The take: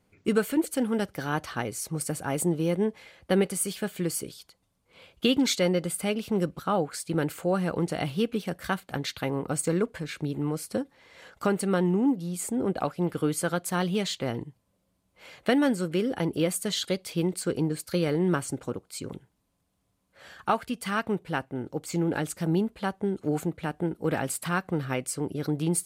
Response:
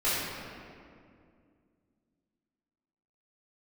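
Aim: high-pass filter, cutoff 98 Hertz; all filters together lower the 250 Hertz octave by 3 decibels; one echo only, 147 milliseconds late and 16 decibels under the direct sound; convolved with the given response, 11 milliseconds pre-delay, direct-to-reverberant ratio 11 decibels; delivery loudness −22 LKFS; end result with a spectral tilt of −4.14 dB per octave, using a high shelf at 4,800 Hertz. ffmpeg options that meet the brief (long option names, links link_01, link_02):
-filter_complex "[0:a]highpass=98,equalizer=frequency=250:width_type=o:gain=-4,highshelf=frequency=4800:gain=7.5,aecho=1:1:147:0.158,asplit=2[link_01][link_02];[1:a]atrim=start_sample=2205,adelay=11[link_03];[link_02][link_03]afir=irnorm=-1:irlink=0,volume=-23dB[link_04];[link_01][link_04]amix=inputs=2:normalize=0,volume=6.5dB"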